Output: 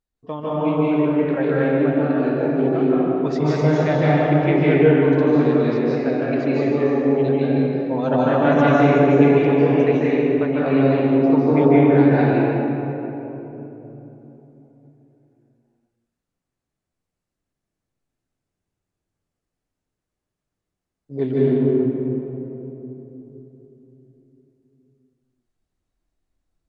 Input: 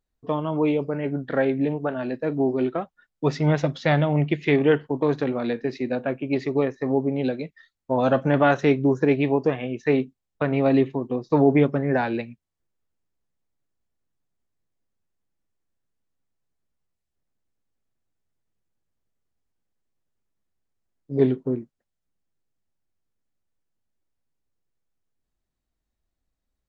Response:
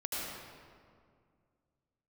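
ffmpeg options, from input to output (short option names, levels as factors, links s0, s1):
-filter_complex "[0:a]asettb=1/sr,asplit=3[s0][s1][s2];[s0]atrim=end=3.604[s3];[s1]atrim=start=3.6:end=5.13,asetpts=PTS-STARTPTS,afade=t=in:d=0.004:c=qsin,afade=t=out:st=1.526:d=0.004:c=qsin,aemphasis=mode=reproduction:type=50fm[s4];[s2]atrim=start=5.126[s5];[s3][s4]acrossfade=d=0.004:c1=hsin:c2=qsin[s6];[s6][s5]acrossfade=d=0.004:c1=qsin:c2=hsin[s7];[1:a]atrim=start_sample=2205,asetrate=22932,aresample=44100[s8];[s7][s8]afir=irnorm=-1:irlink=0,volume=0.596"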